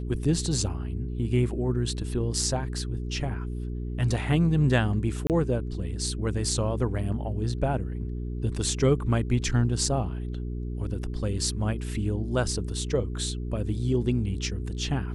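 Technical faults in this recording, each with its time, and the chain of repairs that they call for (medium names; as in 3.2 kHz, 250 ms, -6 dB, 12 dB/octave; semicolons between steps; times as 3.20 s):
hum 60 Hz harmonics 7 -32 dBFS
5.27–5.30 s: dropout 28 ms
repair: de-hum 60 Hz, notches 7; interpolate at 5.27 s, 28 ms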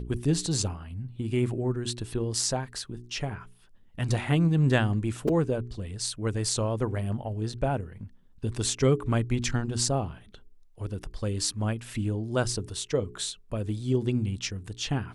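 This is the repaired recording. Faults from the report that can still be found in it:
nothing left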